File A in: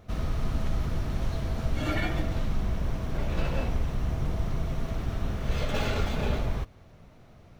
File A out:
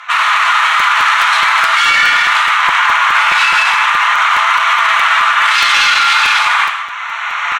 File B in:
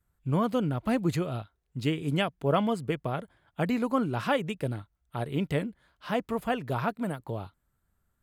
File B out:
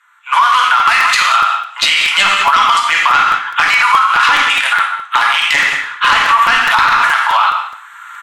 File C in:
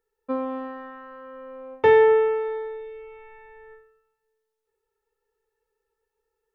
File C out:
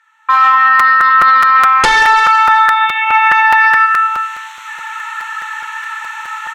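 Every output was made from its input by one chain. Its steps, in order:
local Wiener filter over 9 samples; recorder AGC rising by 14 dB/s; steep high-pass 980 Hz 48 dB/octave; tilt EQ +2 dB/octave; in parallel at -1.5 dB: compression, threshold -40 dBFS; on the sum: flange 0.43 Hz, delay 3.8 ms, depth 4.2 ms, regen +69%; sine folder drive 15 dB, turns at -8.5 dBFS; distance through air 69 m; on a send: delay 183 ms -16 dB; on the sum: gated-style reverb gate 240 ms falling, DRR 0.5 dB; loudness maximiser +14.5 dB; crackling interface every 0.21 s, samples 256, repeat, from 0.79 s; trim -1 dB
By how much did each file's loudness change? +22.0 LU, +20.0 LU, +13.0 LU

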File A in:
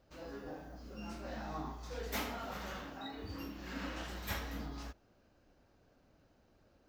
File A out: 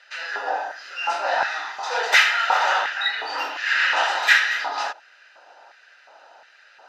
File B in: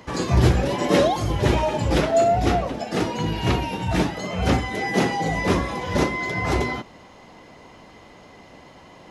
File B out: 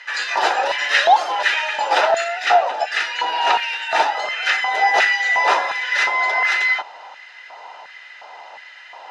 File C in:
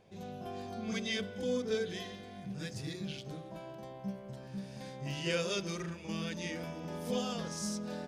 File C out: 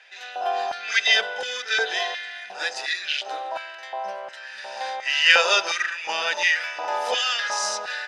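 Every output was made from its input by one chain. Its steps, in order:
band-pass 470–5100 Hz; LFO high-pass square 1.4 Hz 880–1800 Hz; comb of notches 1.1 kHz; peak normalisation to -2 dBFS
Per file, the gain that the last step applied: +24.5 dB, +8.5 dB, +19.5 dB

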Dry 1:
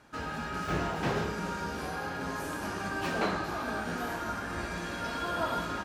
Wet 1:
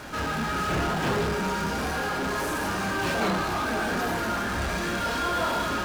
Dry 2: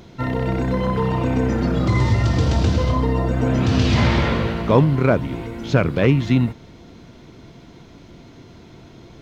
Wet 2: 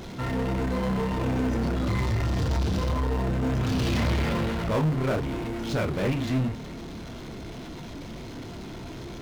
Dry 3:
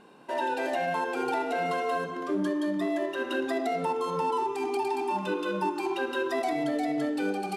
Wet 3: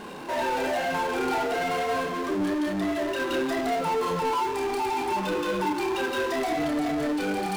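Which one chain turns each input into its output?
chorus voices 4, 0.94 Hz, delay 29 ms, depth 3 ms; power-law waveshaper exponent 0.5; normalise loudness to -27 LUFS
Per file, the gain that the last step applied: +2.5 dB, -12.5 dB, +0.5 dB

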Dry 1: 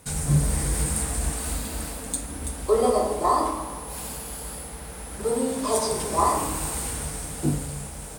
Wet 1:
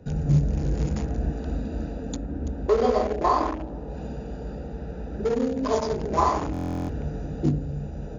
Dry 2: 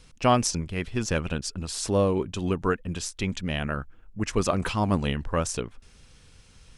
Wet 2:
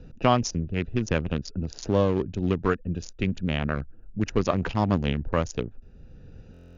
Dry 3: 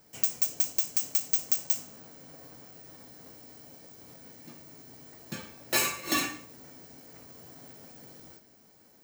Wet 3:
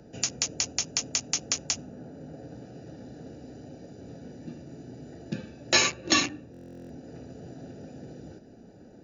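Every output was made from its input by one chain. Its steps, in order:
local Wiener filter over 41 samples; brick-wall FIR low-pass 7.1 kHz; buffer glitch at 6.52 s, samples 1024, times 15; three bands compressed up and down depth 40%; normalise loudness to -27 LUFS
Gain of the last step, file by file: +2.0 dB, +2.0 dB, +11.0 dB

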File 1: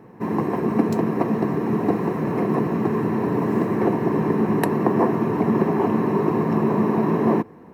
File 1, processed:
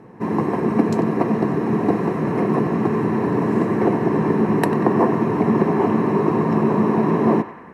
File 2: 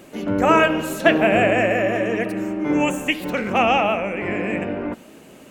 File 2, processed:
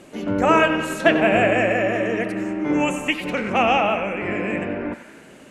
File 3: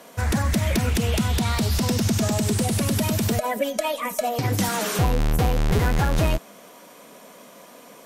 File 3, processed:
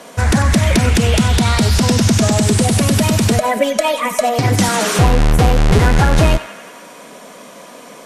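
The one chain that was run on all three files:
low-pass 11 kHz 24 dB/octave; band-passed feedback delay 94 ms, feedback 74%, band-pass 1.7 kHz, level -10 dB; peak normalisation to -3 dBFS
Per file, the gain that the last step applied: +2.0 dB, -1.0 dB, +9.0 dB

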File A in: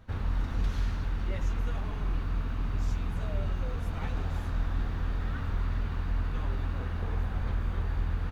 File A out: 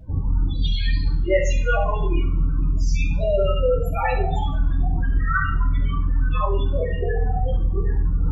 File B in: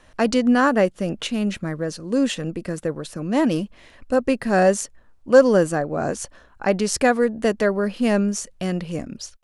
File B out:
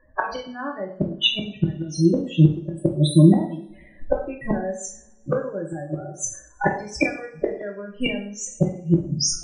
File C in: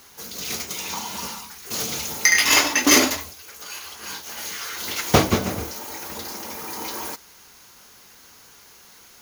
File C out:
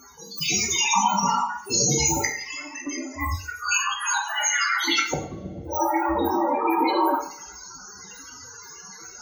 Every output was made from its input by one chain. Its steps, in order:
spectral noise reduction 18 dB; reverse; upward compressor, threshold -30 dBFS; reverse; loudest bins only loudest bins 16; compression 1.5:1, threshold -28 dBFS; inverted gate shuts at -22 dBFS, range -24 dB; two-slope reverb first 0.48 s, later 1.9 s, from -28 dB, DRR 0 dB; normalise loudness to -23 LUFS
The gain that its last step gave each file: +16.5 dB, +14.0 dB, +12.5 dB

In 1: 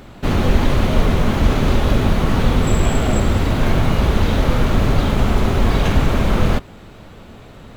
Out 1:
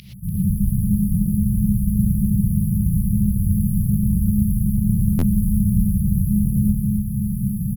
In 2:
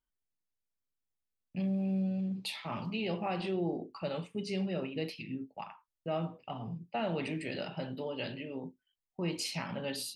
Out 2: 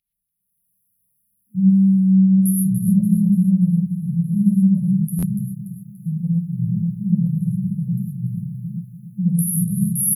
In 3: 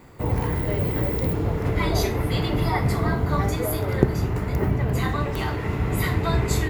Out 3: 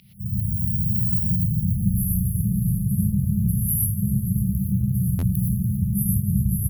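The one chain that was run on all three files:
hum notches 50/100/150 Hz; FFT band-reject 210–10000 Hz; high-order bell 3.4 kHz +13.5 dB; feedback delay 289 ms, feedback 47%, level -11 dB; level rider gain up to 14 dB; frequency weighting D; reverse; compression, threshold -27 dBFS; reverse; gated-style reverb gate 140 ms rising, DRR -2.5 dB; buffer glitch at 5.18 s, samples 512, times 3; peak normalisation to -6 dBFS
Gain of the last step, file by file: +7.5 dB, +11.0 dB, +4.0 dB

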